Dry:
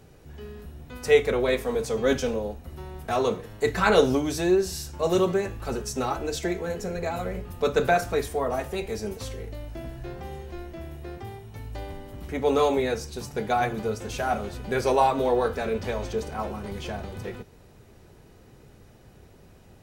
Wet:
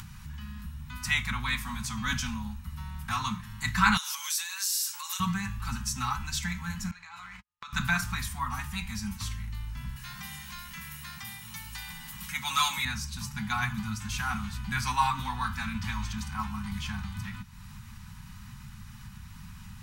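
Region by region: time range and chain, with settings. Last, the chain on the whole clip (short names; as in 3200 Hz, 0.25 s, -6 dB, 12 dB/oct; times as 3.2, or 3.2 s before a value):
3.97–5.2 steep high-pass 800 Hz 48 dB/oct + compressor 12:1, threshold -39 dBFS + tilt +4.5 dB/oct
6.91–7.73 three-band isolator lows -20 dB, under 590 Hz, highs -20 dB, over 7600 Hz + gate -44 dBFS, range -58 dB + compressor 5:1, threshold -44 dBFS
9.96–12.85 tilt +3 dB/oct + comb 5.5 ms, depth 53%
whole clip: elliptic band-stop 210–980 Hz, stop band 40 dB; upward compressor, threshold -38 dBFS; gain +2 dB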